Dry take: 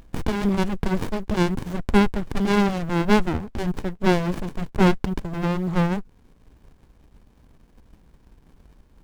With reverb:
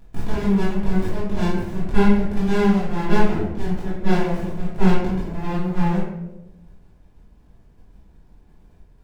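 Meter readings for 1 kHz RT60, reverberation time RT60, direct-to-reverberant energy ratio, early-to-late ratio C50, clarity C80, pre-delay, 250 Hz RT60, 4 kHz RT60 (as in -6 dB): 0.80 s, 1.0 s, -11.5 dB, 0.5 dB, 4.0 dB, 3 ms, 1.2 s, 0.55 s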